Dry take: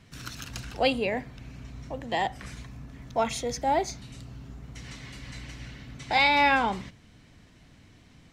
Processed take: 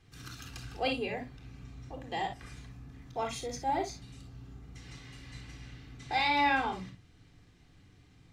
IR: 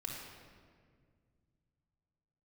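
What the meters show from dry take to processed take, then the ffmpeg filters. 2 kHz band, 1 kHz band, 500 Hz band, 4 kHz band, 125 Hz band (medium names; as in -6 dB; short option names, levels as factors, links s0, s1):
-7.0 dB, -5.5 dB, -8.0 dB, -6.5 dB, -5.0 dB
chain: -filter_complex "[1:a]atrim=start_sample=2205,atrim=end_sample=3087[s0];[0:a][s0]afir=irnorm=-1:irlink=0,volume=0.596"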